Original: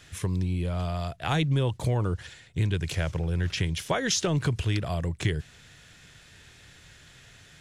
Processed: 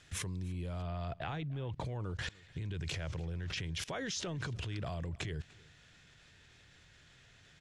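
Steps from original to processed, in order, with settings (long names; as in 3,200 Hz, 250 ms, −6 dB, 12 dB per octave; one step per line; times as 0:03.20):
low-pass filter 10,000 Hz 12 dB per octave, from 0:00.82 3,300 Hz, from 0:01.85 6,600 Hz
brickwall limiter −24.5 dBFS, peak gain reduction 10.5 dB
output level in coarse steps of 23 dB
single-tap delay 297 ms −23 dB
level +7.5 dB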